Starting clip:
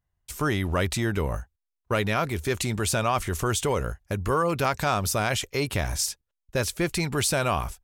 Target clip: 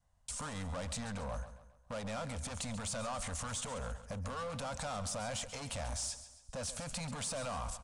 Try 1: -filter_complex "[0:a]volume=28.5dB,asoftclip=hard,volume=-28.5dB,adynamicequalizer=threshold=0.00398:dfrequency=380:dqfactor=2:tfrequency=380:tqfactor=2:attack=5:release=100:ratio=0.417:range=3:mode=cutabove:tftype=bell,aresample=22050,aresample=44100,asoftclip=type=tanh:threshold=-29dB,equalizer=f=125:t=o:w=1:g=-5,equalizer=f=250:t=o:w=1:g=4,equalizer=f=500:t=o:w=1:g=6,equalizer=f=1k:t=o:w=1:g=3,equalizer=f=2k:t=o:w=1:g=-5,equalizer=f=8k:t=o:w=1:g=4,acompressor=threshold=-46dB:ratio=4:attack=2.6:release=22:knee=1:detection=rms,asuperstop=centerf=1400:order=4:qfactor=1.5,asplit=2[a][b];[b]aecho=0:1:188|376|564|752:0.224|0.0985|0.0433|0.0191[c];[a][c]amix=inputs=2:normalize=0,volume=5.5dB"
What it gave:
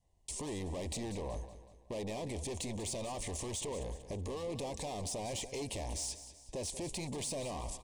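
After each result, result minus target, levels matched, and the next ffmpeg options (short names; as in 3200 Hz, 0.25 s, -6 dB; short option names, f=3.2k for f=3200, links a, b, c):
soft clip: distortion +13 dB; echo 52 ms late; 1000 Hz band -3.5 dB
-filter_complex "[0:a]volume=28.5dB,asoftclip=hard,volume=-28.5dB,adynamicequalizer=threshold=0.00398:dfrequency=380:dqfactor=2:tfrequency=380:tqfactor=2:attack=5:release=100:ratio=0.417:range=3:mode=cutabove:tftype=bell,aresample=22050,aresample=44100,asoftclip=type=tanh:threshold=-21.5dB,equalizer=f=125:t=o:w=1:g=-5,equalizer=f=250:t=o:w=1:g=4,equalizer=f=500:t=o:w=1:g=6,equalizer=f=1k:t=o:w=1:g=3,equalizer=f=2k:t=o:w=1:g=-5,equalizer=f=8k:t=o:w=1:g=4,acompressor=threshold=-46dB:ratio=4:attack=2.6:release=22:knee=1:detection=rms,asuperstop=centerf=1400:order=4:qfactor=1.5,asplit=2[a][b];[b]aecho=0:1:188|376|564|752:0.224|0.0985|0.0433|0.0191[c];[a][c]amix=inputs=2:normalize=0,volume=5.5dB"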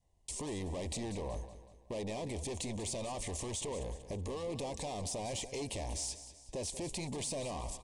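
echo 52 ms late; 1000 Hz band -3.5 dB
-filter_complex "[0:a]volume=28.5dB,asoftclip=hard,volume=-28.5dB,adynamicequalizer=threshold=0.00398:dfrequency=380:dqfactor=2:tfrequency=380:tqfactor=2:attack=5:release=100:ratio=0.417:range=3:mode=cutabove:tftype=bell,aresample=22050,aresample=44100,asoftclip=type=tanh:threshold=-21.5dB,equalizer=f=125:t=o:w=1:g=-5,equalizer=f=250:t=o:w=1:g=4,equalizer=f=500:t=o:w=1:g=6,equalizer=f=1k:t=o:w=1:g=3,equalizer=f=2k:t=o:w=1:g=-5,equalizer=f=8k:t=o:w=1:g=4,acompressor=threshold=-46dB:ratio=4:attack=2.6:release=22:knee=1:detection=rms,asuperstop=centerf=1400:order=4:qfactor=1.5,asplit=2[a][b];[b]aecho=0:1:136|272|408|544:0.224|0.0985|0.0433|0.0191[c];[a][c]amix=inputs=2:normalize=0,volume=5.5dB"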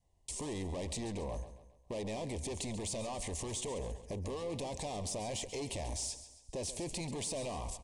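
1000 Hz band -3.5 dB
-filter_complex "[0:a]volume=28.5dB,asoftclip=hard,volume=-28.5dB,adynamicequalizer=threshold=0.00398:dfrequency=380:dqfactor=2:tfrequency=380:tqfactor=2:attack=5:release=100:ratio=0.417:range=3:mode=cutabove:tftype=bell,aresample=22050,aresample=44100,asoftclip=type=tanh:threshold=-21.5dB,equalizer=f=125:t=o:w=1:g=-5,equalizer=f=250:t=o:w=1:g=4,equalizer=f=500:t=o:w=1:g=6,equalizer=f=1k:t=o:w=1:g=3,equalizer=f=2k:t=o:w=1:g=-5,equalizer=f=8k:t=o:w=1:g=4,acompressor=threshold=-46dB:ratio=4:attack=2.6:release=22:knee=1:detection=rms,asuperstop=centerf=360:order=4:qfactor=1.5,asplit=2[a][b];[b]aecho=0:1:136|272|408|544:0.224|0.0985|0.0433|0.0191[c];[a][c]amix=inputs=2:normalize=0,volume=5.5dB"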